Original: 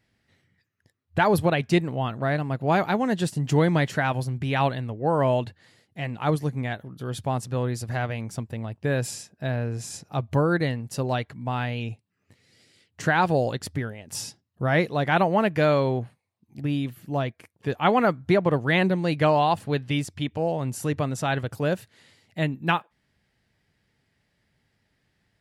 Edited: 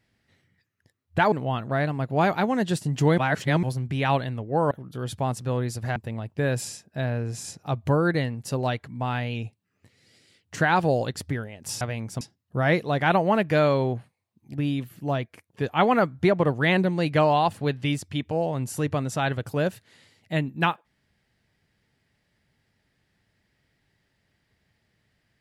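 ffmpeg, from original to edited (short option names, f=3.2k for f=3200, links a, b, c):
-filter_complex "[0:a]asplit=8[a][b][c][d][e][f][g][h];[a]atrim=end=1.322[i];[b]atrim=start=1.828:end=3.692[j];[c]atrim=start=3.688:end=4.142,asetpts=PTS-STARTPTS,areverse[k];[d]atrim=start=4.138:end=5.222[l];[e]atrim=start=6.768:end=8.022[m];[f]atrim=start=8.418:end=14.272[n];[g]atrim=start=8.018:end=8.422[o];[h]atrim=start=14.268[p];[i][j]acrossfade=d=0.004:c1=hsin:c2=hsin[q];[q][k]acrossfade=d=0.004:c1=hsin:c2=hsin[r];[r][l]acrossfade=d=0.004:c1=hsin:c2=hsin[s];[s][m]acrossfade=d=0.004:c1=hsin:c2=hsin[t];[t][n]acrossfade=d=0.004:c1=hsin:c2=hsin[u];[u][o]acrossfade=d=0.004:c1=hsin:c2=hsin[v];[v][p]acrossfade=d=0.004:c1=hsin:c2=hsin"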